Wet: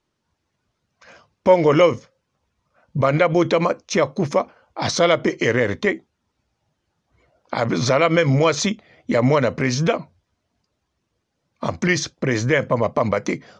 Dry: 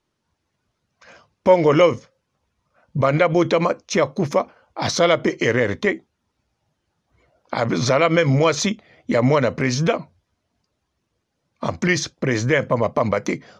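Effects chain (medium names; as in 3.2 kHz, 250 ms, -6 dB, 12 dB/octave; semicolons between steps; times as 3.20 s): low-pass 9.6 kHz 24 dB/octave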